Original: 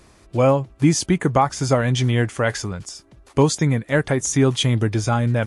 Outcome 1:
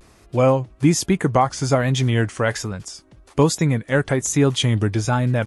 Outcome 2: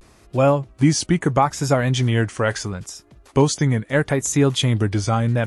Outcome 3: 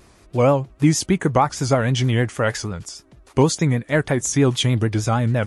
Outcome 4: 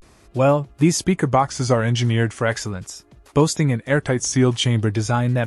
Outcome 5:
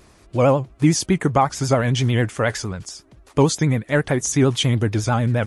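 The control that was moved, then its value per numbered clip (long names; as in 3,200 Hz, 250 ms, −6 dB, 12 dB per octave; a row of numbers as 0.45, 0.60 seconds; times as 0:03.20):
pitch vibrato, speed: 1.2, 0.75, 6.4, 0.4, 11 Hertz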